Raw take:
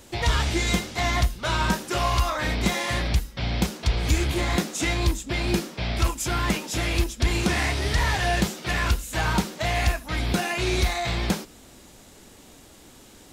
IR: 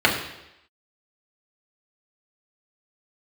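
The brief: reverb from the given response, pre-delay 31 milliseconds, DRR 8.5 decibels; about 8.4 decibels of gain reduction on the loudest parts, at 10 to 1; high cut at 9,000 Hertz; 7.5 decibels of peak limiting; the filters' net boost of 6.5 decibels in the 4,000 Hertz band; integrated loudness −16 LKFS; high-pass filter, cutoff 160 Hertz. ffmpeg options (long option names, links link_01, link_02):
-filter_complex "[0:a]highpass=160,lowpass=9000,equalizer=frequency=4000:width_type=o:gain=8,acompressor=threshold=-27dB:ratio=10,alimiter=limit=-21dB:level=0:latency=1,asplit=2[link_01][link_02];[1:a]atrim=start_sample=2205,adelay=31[link_03];[link_02][link_03]afir=irnorm=-1:irlink=0,volume=-29dB[link_04];[link_01][link_04]amix=inputs=2:normalize=0,volume=14.5dB"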